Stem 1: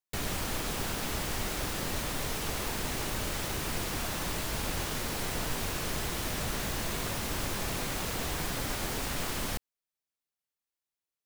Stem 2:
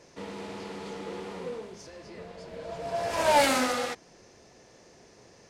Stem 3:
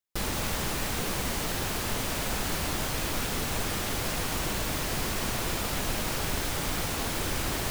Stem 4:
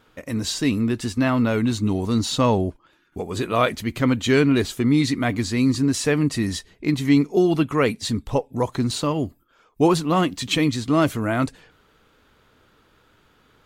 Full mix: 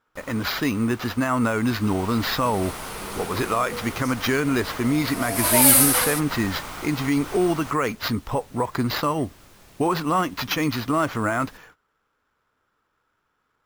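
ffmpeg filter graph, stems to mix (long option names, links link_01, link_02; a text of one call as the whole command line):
ffmpeg -i stem1.wav -i stem2.wav -i stem3.wav -i stem4.wav -filter_complex "[0:a]adelay=2000,volume=-17.5dB[link_01];[1:a]equalizer=frequency=7800:width=0.62:gain=11.5,aexciter=amount=12.5:drive=7.5:freq=10000,asplit=2[link_02][link_03];[link_03]adelay=9.4,afreqshift=1.8[link_04];[link_02][link_04]amix=inputs=2:normalize=1,adelay=2250,volume=1.5dB[link_05];[2:a]bandreject=frequency=1700:width=12,volume=-8.5dB,afade=type=in:start_time=1.54:duration=0.74:silence=0.316228[link_06];[3:a]agate=range=-18dB:threshold=-51dB:ratio=16:detection=peak,acrusher=samples=5:mix=1:aa=0.000001,volume=-2dB[link_07];[link_06][link_07]amix=inputs=2:normalize=0,equalizer=frequency=1200:width_type=o:width=1.8:gain=10.5,alimiter=limit=-13dB:level=0:latency=1:release=123,volume=0dB[link_08];[link_01][link_05][link_08]amix=inputs=3:normalize=0" out.wav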